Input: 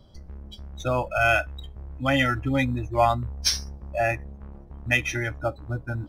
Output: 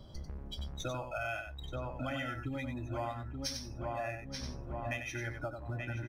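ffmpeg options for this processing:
ffmpeg -i in.wav -filter_complex "[0:a]asplit=2[link_01][link_02];[link_02]adelay=877,lowpass=frequency=2200:poles=1,volume=-10dB,asplit=2[link_03][link_04];[link_04]adelay=877,lowpass=frequency=2200:poles=1,volume=0.35,asplit=2[link_05][link_06];[link_06]adelay=877,lowpass=frequency=2200:poles=1,volume=0.35,asplit=2[link_07][link_08];[link_08]adelay=877,lowpass=frequency=2200:poles=1,volume=0.35[link_09];[link_03][link_05][link_07][link_09]amix=inputs=4:normalize=0[link_10];[link_01][link_10]amix=inputs=2:normalize=0,acompressor=threshold=-37dB:ratio=10,asplit=2[link_11][link_12];[link_12]aecho=0:1:94:0.447[link_13];[link_11][link_13]amix=inputs=2:normalize=0,volume=1dB" out.wav

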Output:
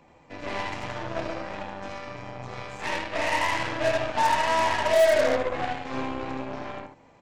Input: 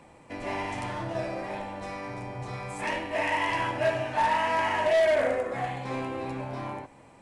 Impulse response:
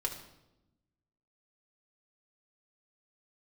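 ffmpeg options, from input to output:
-af "aecho=1:1:12|80:0.266|0.708,aresample=16000,aresample=44100,aeval=exprs='0.188*(cos(1*acos(clip(val(0)/0.188,-1,1)))-cos(1*PI/2))+0.0106*(cos(7*acos(clip(val(0)/0.188,-1,1)))-cos(7*PI/2))+0.0188*(cos(8*acos(clip(val(0)/0.188,-1,1)))-cos(8*PI/2))':channel_layout=same"

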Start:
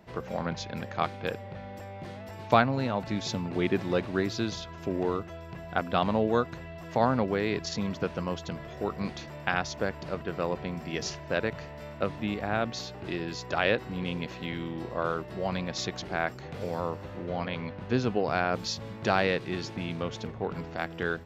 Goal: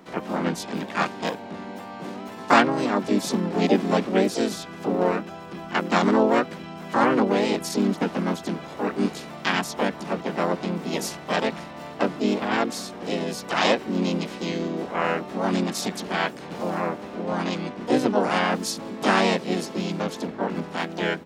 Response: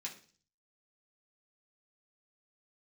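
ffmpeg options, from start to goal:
-filter_complex "[0:a]lowshelf=frequency=140:width_type=q:width=3:gain=-9,asplit=4[link_01][link_02][link_03][link_04];[link_02]asetrate=52444,aresample=44100,atempo=0.840896,volume=-1dB[link_05];[link_03]asetrate=66075,aresample=44100,atempo=0.66742,volume=-3dB[link_06];[link_04]asetrate=88200,aresample=44100,atempo=0.5,volume=-4dB[link_07];[link_01][link_05][link_06][link_07]amix=inputs=4:normalize=0"

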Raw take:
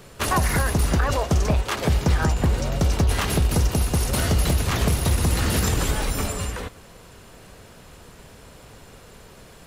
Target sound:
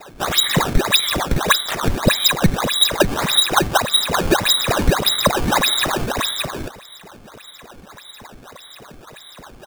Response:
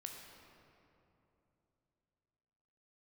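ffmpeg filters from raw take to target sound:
-filter_complex "[0:a]lowshelf=frequency=110:width_type=q:width=3:gain=-12.5,bandreject=frequency=50:width_type=h:width=6,bandreject=frequency=100:width_type=h:width=6,bandreject=frequency=150:width_type=h:width=6,lowpass=frequency=3400:width_type=q:width=0.5098,lowpass=frequency=3400:width_type=q:width=0.6013,lowpass=frequency=3400:width_type=q:width=0.9,lowpass=frequency=3400:width_type=q:width=2.563,afreqshift=-4000,asplit=2[link_01][link_02];[link_02]volume=19.5dB,asoftclip=hard,volume=-19.5dB,volume=-10dB[link_03];[link_01][link_03]amix=inputs=2:normalize=0,asuperstop=centerf=2700:order=4:qfactor=2,aecho=1:1:84:0.141,asplit=2[link_04][link_05];[1:a]atrim=start_sample=2205,asetrate=88200,aresample=44100[link_06];[link_05][link_06]afir=irnorm=-1:irlink=0,volume=-3dB[link_07];[link_04][link_07]amix=inputs=2:normalize=0,acrusher=samples=13:mix=1:aa=0.000001:lfo=1:lforange=20.8:lforate=1.7,volume=3dB"

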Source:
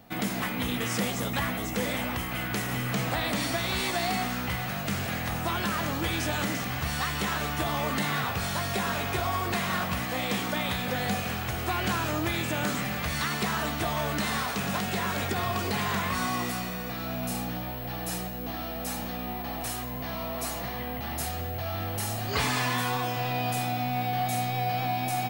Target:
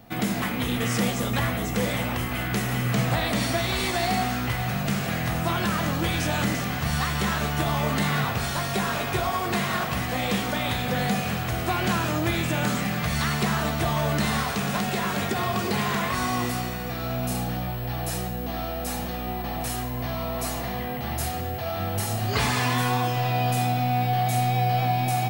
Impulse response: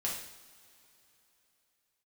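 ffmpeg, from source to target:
-filter_complex "[0:a]asplit=2[link_01][link_02];[1:a]atrim=start_sample=2205,lowshelf=frequency=460:gain=9.5[link_03];[link_02][link_03]afir=irnorm=-1:irlink=0,volume=-10dB[link_04];[link_01][link_04]amix=inputs=2:normalize=0"

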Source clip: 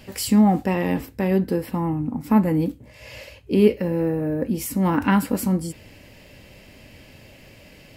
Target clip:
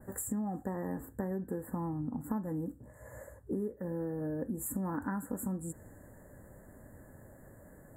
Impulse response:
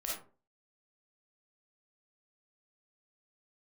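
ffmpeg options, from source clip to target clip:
-af "adynamicequalizer=threshold=0.00282:dfrequency=6000:dqfactor=1.3:tfrequency=6000:tqfactor=1.3:attack=5:release=100:ratio=0.375:range=3:mode=boostabove:tftype=bell,acompressor=threshold=-26dB:ratio=16,asuperstop=centerf=3700:order=20:qfactor=0.69,volume=-6dB"

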